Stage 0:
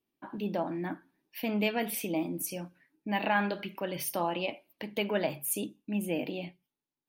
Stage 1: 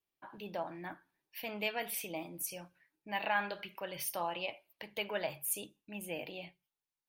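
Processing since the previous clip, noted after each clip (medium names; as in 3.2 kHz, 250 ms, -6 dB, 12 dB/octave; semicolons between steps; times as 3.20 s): peaking EQ 250 Hz -14.5 dB 1.3 oct; trim -3 dB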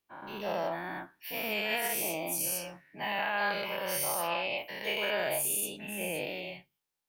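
every event in the spectrogram widened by 240 ms; peak limiter -21.5 dBFS, peak gain reduction 6.5 dB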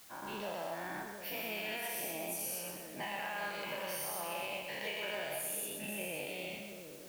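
compression 4:1, threshold -39 dBFS, peak gain reduction 10.5 dB; added noise white -57 dBFS; two-band feedback delay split 530 Hz, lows 716 ms, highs 128 ms, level -6 dB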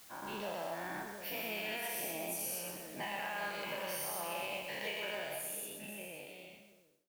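fade out at the end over 2.19 s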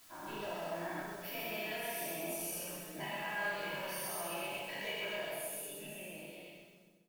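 on a send: feedback delay 135 ms, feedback 40%, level -8 dB; on the sum: simulated room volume 570 m³, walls furnished, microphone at 2.9 m; trim -5.5 dB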